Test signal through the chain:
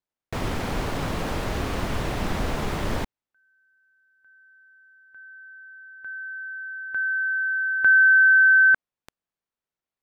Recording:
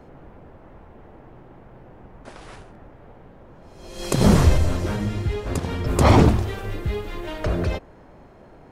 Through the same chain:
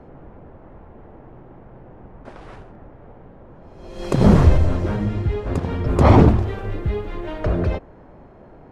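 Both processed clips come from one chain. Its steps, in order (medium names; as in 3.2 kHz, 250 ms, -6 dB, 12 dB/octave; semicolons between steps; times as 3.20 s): low-pass 1.4 kHz 6 dB/octave; trim +3 dB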